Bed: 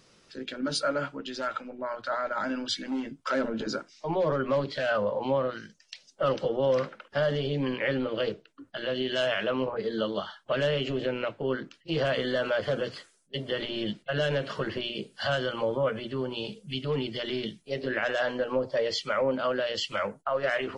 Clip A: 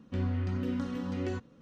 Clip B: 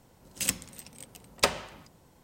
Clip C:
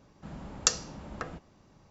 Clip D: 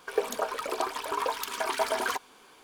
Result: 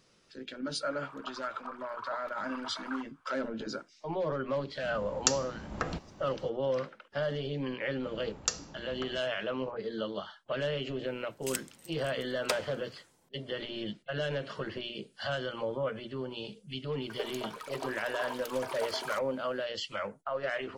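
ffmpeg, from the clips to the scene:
-filter_complex "[4:a]asplit=2[s0][s1];[3:a]asplit=2[s2][s3];[0:a]volume=0.501[s4];[s0]bandpass=f=1300:t=q:w=4.2:csg=0[s5];[s2]dynaudnorm=f=270:g=3:m=3.76[s6];[2:a]highpass=f=200:p=1[s7];[s5]atrim=end=2.63,asetpts=PTS-STARTPTS,volume=0.562,afade=t=in:d=0.004:c=hsin,afade=t=out:st=2.626:d=0.004:c=hsin,adelay=850[s8];[s6]atrim=end=1.9,asetpts=PTS-STARTPTS,volume=0.631,afade=t=in:d=0.004:c=hsin,afade=t=out:st=1.896:d=0.004:c=hsin,adelay=4600[s9];[s3]atrim=end=1.9,asetpts=PTS-STARTPTS,volume=0.501,afade=t=in:d=0.004:c=hsin,afade=t=out:st=1.896:d=0.004:c=hsin,adelay=7810[s10];[s7]atrim=end=2.23,asetpts=PTS-STARTPTS,volume=0.398,afade=t=in:d=0.004:c=hsin,afade=t=out:st=2.226:d=0.004:c=hsin,adelay=487746S[s11];[s1]atrim=end=2.63,asetpts=PTS-STARTPTS,volume=0.316,afade=t=in:d=0.004:c=hsin,afade=t=out:st=2.626:d=0.004:c=hsin,adelay=17020[s12];[s4][s8][s9][s10][s11][s12]amix=inputs=6:normalize=0"

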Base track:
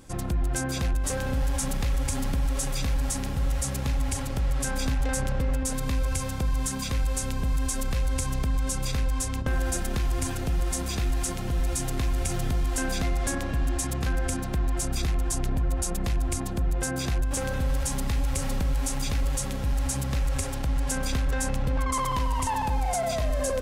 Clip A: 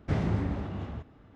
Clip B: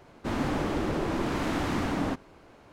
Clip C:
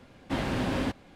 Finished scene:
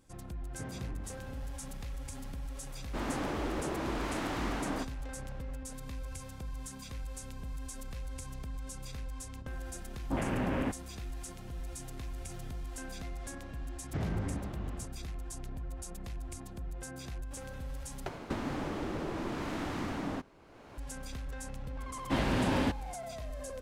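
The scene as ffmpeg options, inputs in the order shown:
-filter_complex "[1:a]asplit=2[s0][s1];[2:a]asplit=2[s2][s3];[3:a]asplit=2[s4][s5];[0:a]volume=0.178[s6];[s0]afreqshift=15[s7];[s2]lowshelf=f=160:g=-10[s8];[s4]afwtdn=0.0126[s9];[s1]alimiter=limit=0.0944:level=0:latency=1:release=30[s10];[s3]acompressor=mode=upward:threshold=0.0282:ratio=4:attack=98:release=853:knee=2.83:detection=peak[s11];[s6]asplit=2[s12][s13];[s12]atrim=end=18.064[s14];[s11]atrim=end=2.72,asetpts=PTS-STARTPTS,volume=0.422[s15];[s13]atrim=start=20.776[s16];[s7]atrim=end=1.35,asetpts=PTS-STARTPTS,volume=0.158,afade=t=in:d=0.004:c=hsin,afade=t=out:st=1.346:d=0.004:c=hsin,adelay=490[s17];[s8]atrim=end=2.72,asetpts=PTS-STARTPTS,volume=0.596,afade=t=in:d=0.004:c=hsin,afade=t=out:st=2.716:d=0.004:c=hsin,adelay=2690[s18];[s9]atrim=end=1.15,asetpts=PTS-STARTPTS,volume=0.708,afade=t=in:d=0.004:c=hsin,afade=t=out:st=1.146:d=0.004:c=hsin,adelay=9800[s19];[s10]atrim=end=1.35,asetpts=PTS-STARTPTS,volume=0.501,afade=t=in:d=0.004:c=hsin,afade=t=out:st=1.346:d=0.004:c=hsin,adelay=13850[s20];[s5]atrim=end=1.15,asetpts=PTS-STARTPTS,volume=0.944,afade=t=in:d=0.004:c=hsin,afade=t=out:st=1.146:d=0.004:c=hsin,adelay=961380S[s21];[s14][s15]acrossfade=d=0.004:c1=hsin:c2=hsin[s22];[s22][s16]acrossfade=d=0.004:c1=hsin:c2=hsin[s23];[s23][s17][s18][s19][s20][s21]amix=inputs=6:normalize=0"

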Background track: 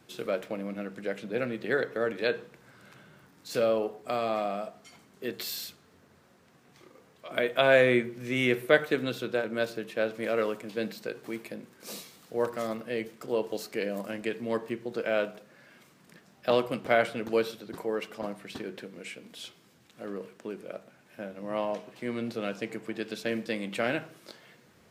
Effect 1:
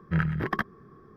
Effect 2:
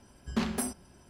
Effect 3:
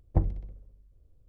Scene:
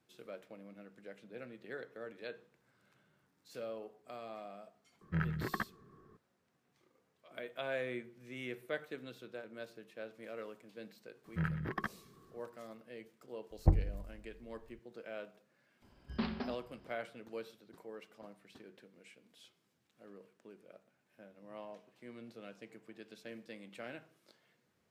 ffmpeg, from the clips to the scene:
-filter_complex "[1:a]asplit=2[s0][s1];[0:a]volume=0.133[s2];[2:a]aresample=11025,aresample=44100[s3];[s0]atrim=end=1.16,asetpts=PTS-STARTPTS,volume=0.355,afade=t=in:d=0.004:c=hsin,afade=t=out:st=1.156:d=0.004:c=hsin,adelay=220941S[s4];[s1]atrim=end=1.16,asetpts=PTS-STARTPTS,volume=0.316,afade=t=in:d=0.004:c=hsin,afade=t=out:st=1.156:d=0.004:c=hsin,adelay=11250[s5];[3:a]atrim=end=1.28,asetpts=PTS-STARTPTS,volume=0.794,afade=t=in:d=0.004:c=hsin,afade=t=out:st=1.276:d=0.004:c=hsin,adelay=13510[s6];[s3]atrim=end=1.09,asetpts=PTS-STARTPTS,volume=0.473,afade=t=in:d=0.004:c=hsin,afade=t=out:st=1.086:d=0.004:c=hsin,adelay=15820[s7];[s2][s4][s5][s6][s7]amix=inputs=5:normalize=0"

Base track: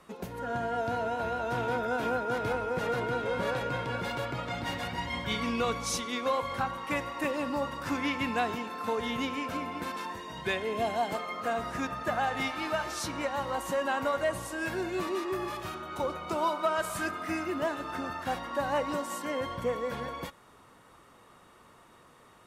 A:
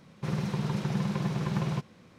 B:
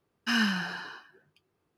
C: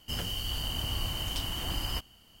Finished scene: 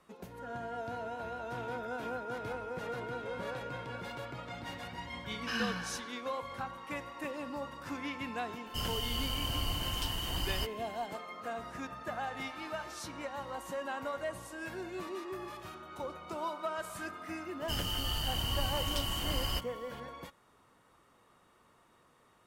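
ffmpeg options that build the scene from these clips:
-filter_complex "[3:a]asplit=2[s0][s1];[0:a]volume=0.376[s2];[2:a]atrim=end=1.77,asetpts=PTS-STARTPTS,volume=0.376,afade=t=in:d=0.004:c=hsin,afade=t=out:st=1.766:d=0.004:c=hsin,adelay=5200[s3];[s0]atrim=end=2.4,asetpts=PTS-STARTPTS,volume=0.794,afade=t=in:d=0.004:c=hsin,afade=t=out:st=2.396:d=0.004:c=hsin,adelay=381906S[s4];[s1]atrim=end=2.4,asetpts=PTS-STARTPTS,volume=0.891,afade=t=in:d=0.004:c=hsin,afade=t=out:st=2.396:d=0.004:c=hsin,adelay=17600[s5];[s2][s3][s4][s5]amix=inputs=4:normalize=0"

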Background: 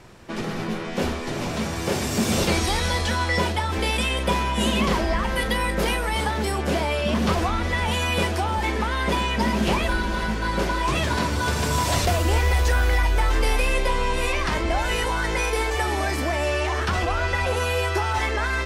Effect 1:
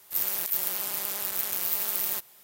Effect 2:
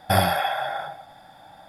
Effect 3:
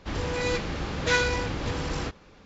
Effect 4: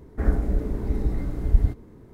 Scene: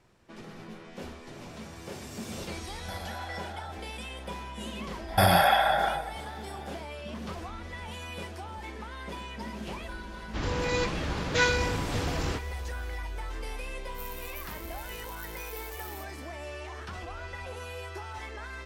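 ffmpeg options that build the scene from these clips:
-filter_complex "[2:a]asplit=2[s0][s1];[0:a]volume=0.15[s2];[s0]acompressor=threshold=0.0224:ratio=6:attack=3.2:release=140:knee=1:detection=peak[s3];[s1]alimiter=level_in=4.47:limit=0.891:release=50:level=0:latency=1[s4];[1:a]aeval=exprs='val(0)*sin(2*PI*1000*n/s+1000*0.5/2.1*sin(2*PI*2.1*n/s))':c=same[s5];[s3]atrim=end=1.68,asetpts=PTS-STARTPTS,volume=0.501,afade=t=in:d=0.004:c=hsin,afade=t=out:st=1.676:d=0.004:c=hsin,adelay=2790[s6];[s4]atrim=end=1.68,asetpts=PTS-STARTPTS,volume=0.316,afade=t=in:d=0.004:c=hsin,afade=t=out:st=1.676:d=0.004:c=hsin,adelay=5080[s7];[3:a]atrim=end=2.45,asetpts=PTS-STARTPTS,volume=0.891,afade=t=in:d=0.004:c=hsin,afade=t=out:st=2.446:d=0.004:c=hsin,adelay=10280[s8];[s5]atrim=end=2.43,asetpts=PTS-STARTPTS,volume=0.188,afade=t=in:d=0.004:c=hsin,afade=t=out:st=2.426:d=0.004:c=hsin,adelay=13840[s9];[s2][s6][s7][s8][s9]amix=inputs=5:normalize=0"

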